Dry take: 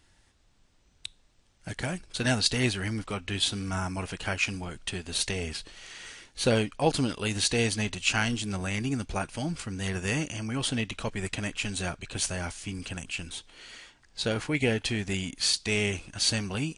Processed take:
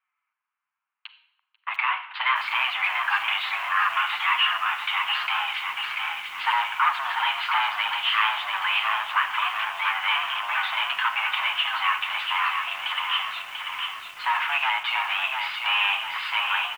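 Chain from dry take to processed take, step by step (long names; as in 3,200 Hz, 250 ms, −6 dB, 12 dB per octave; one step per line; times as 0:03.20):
low-pass that shuts in the quiet parts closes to 1,800 Hz, open at −23.5 dBFS
parametric band 1,500 Hz −8.5 dB 0.25 octaves
in parallel at −1.5 dB: downward compressor 16 to 1, threshold −33 dBFS, peak gain reduction 16 dB
on the sum: flanger 0.7 Hz, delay 5.4 ms, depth 4.7 ms, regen −11%
leveller curve on the samples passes 5
repeating echo 491 ms, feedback 57%, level −24 dB
on a send at −10 dB: convolution reverb RT60 0.75 s, pre-delay 35 ms
on the sum: single-sideband voice off tune +400 Hz 600–2,400 Hz
feedback echo at a low word length 690 ms, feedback 55%, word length 8 bits, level −5 dB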